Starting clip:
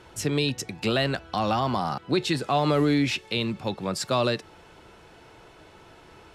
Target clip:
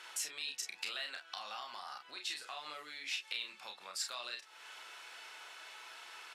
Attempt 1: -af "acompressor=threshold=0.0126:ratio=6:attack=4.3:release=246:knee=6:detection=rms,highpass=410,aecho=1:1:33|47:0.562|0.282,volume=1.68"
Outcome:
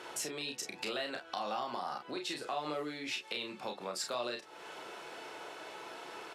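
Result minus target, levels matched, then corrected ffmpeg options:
500 Hz band +13.0 dB
-af "acompressor=threshold=0.0126:ratio=6:attack=4.3:release=246:knee=6:detection=rms,highpass=1500,aecho=1:1:33|47:0.562|0.282,volume=1.68"

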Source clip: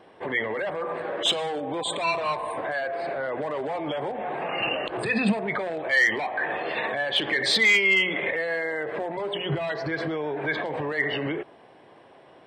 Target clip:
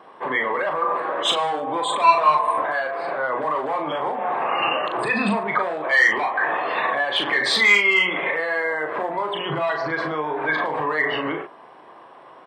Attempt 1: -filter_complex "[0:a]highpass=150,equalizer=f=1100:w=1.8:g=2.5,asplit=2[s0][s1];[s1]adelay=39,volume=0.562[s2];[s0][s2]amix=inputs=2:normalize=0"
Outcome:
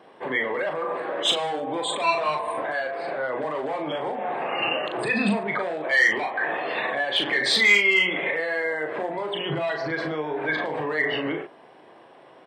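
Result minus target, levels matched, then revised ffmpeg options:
1 kHz band -4.5 dB
-filter_complex "[0:a]highpass=150,equalizer=f=1100:w=1.8:g=13.5,asplit=2[s0][s1];[s1]adelay=39,volume=0.562[s2];[s0][s2]amix=inputs=2:normalize=0"

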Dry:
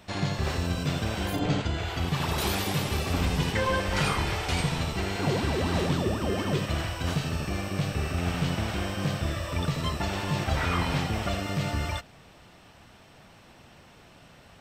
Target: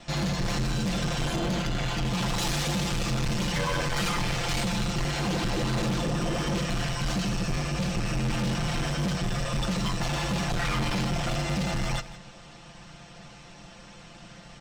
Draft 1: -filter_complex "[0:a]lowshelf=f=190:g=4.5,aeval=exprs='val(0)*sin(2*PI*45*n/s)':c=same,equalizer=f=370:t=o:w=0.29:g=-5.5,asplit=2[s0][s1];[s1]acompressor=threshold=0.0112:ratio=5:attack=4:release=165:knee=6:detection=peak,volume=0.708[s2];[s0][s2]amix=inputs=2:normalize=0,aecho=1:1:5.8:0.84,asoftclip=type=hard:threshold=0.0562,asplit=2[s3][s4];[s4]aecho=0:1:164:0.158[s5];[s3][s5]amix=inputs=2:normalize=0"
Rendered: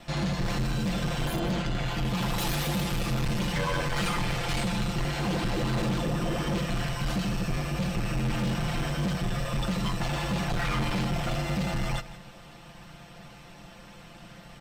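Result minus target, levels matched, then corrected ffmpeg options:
compression: peak gain reduction +8.5 dB; 8 kHz band -3.5 dB
-filter_complex "[0:a]lowshelf=f=190:g=4.5,aeval=exprs='val(0)*sin(2*PI*45*n/s)':c=same,lowpass=f=6800:t=q:w=1.9,equalizer=f=370:t=o:w=0.29:g=-5.5,asplit=2[s0][s1];[s1]acompressor=threshold=0.0376:ratio=5:attack=4:release=165:knee=6:detection=peak,volume=0.708[s2];[s0][s2]amix=inputs=2:normalize=0,aecho=1:1:5.8:0.84,asoftclip=type=hard:threshold=0.0562,asplit=2[s3][s4];[s4]aecho=0:1:164:0.158[s5];[s3][s5]amix=inputs=2:normalize=0"

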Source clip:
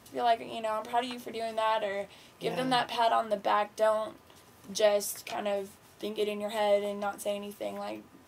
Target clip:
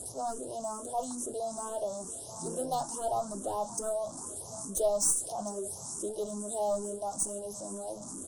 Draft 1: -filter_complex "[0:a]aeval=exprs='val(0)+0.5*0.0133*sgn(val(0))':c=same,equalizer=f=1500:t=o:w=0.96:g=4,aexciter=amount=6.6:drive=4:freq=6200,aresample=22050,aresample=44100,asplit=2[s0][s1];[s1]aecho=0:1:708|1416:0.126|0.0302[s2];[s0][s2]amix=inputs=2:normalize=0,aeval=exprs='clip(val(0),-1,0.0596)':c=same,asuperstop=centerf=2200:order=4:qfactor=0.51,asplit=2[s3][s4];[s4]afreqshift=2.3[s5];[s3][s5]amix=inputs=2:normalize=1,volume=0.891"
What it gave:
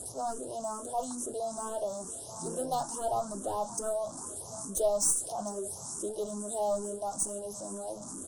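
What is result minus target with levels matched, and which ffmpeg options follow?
2 kHz band +3.0 dB
-filter_complex "[0:a]aeval=exprs='val(0)+0.5*0.0133*sgn(val(0))':c=same,aexciter=amount=6.6:drive=4:freq=6200,aresample=22050,aresample=44100,asplit=2[s0][s1];[s1]aecho=0:1:708|1416:0.126|0.0302[s2];[s0][s2]amix=inputs=2:normalize=0,aeval=exprs='clip(val(0),-1,0.0596)':c=same,asuperstop=centerf=2200:order=4:qfactor=0.51,asplit=2[s3][s4];[s4]afreqshift=2.3[s5];[s3][s5]amix=inputs=2:normalize=1,volume=0.891"

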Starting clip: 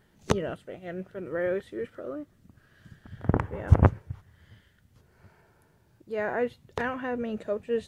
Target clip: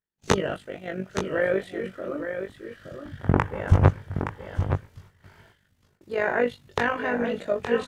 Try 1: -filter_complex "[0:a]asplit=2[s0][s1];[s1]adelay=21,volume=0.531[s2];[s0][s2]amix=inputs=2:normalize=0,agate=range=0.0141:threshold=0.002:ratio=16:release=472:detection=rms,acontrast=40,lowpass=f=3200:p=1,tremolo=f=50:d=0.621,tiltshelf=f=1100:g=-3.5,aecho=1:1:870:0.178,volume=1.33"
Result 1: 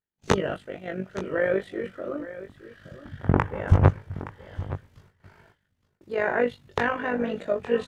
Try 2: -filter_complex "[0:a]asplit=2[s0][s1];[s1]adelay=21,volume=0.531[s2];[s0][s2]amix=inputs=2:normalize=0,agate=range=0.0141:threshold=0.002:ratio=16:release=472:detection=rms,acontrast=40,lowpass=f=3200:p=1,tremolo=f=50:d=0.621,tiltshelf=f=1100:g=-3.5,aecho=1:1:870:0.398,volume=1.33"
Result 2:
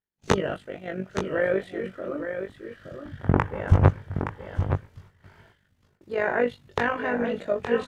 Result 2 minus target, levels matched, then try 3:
8 kHz band -4.0 dB
-filter_complex "[0:a]asplit=2[s0][s1];[s1]adelay=21,volume=0.531[s2];[s0][s2]amix=inputs=2:normalize=0,agate=range=0.0141:threshold=0.002:ratio=16:release=472:detection=rms,acontrast=40,lowpass=f=7100:p=1,tremolo=f=50:d=0.621,tiltshelf=f=1100:g=-3.5,aecho=1:1:870:0.398,volume=1.33"

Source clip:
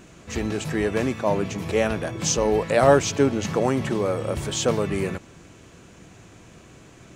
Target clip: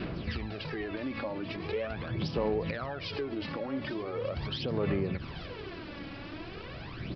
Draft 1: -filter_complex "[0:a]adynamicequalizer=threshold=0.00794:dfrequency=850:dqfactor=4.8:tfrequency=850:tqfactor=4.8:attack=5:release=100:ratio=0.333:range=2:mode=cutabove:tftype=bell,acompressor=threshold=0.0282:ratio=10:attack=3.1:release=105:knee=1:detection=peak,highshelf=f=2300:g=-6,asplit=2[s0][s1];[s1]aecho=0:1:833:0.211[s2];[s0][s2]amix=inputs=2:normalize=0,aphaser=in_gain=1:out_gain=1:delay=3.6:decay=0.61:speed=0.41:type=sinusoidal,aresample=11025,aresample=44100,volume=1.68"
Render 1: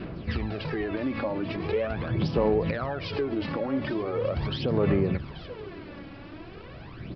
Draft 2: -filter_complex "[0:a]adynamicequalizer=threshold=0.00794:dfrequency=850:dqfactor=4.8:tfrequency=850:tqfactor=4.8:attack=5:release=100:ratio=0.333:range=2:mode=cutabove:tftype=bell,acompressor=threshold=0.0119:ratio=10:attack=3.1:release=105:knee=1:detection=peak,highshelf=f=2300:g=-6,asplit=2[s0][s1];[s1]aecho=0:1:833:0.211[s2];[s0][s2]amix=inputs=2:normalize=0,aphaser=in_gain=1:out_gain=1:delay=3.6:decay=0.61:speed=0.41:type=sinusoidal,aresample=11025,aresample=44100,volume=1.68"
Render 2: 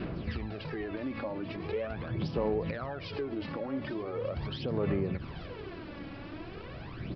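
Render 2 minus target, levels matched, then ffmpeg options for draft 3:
4 kHz band -5.0 dB
-filter_complex "[0:a]adynamicequalizer=threshold=0.00794:dfrequency=850:dqfactor=4.8:tfrequency=850:tqfactor=4.8:attack=5:release=100:ratio=0.333:range=2:mode=cutabove:tftype=bell,acompressor=threshold=0.0119:ratio=10:attack=3.1:release=105:knee=1:detection=peak,highshelf=f=2300:g=2,asplit=2[s0][s1];[s1]aecho=0:1:833:0.211[s2];[s0][s2]amix=inputs=2:normalize=0,aphaser=in_gain=1:out_gain=1:delay=3.6:decay=0.61:speed=0.41:type=sinusoidal,aresample=11025,aresample=44100,volume=1.68"

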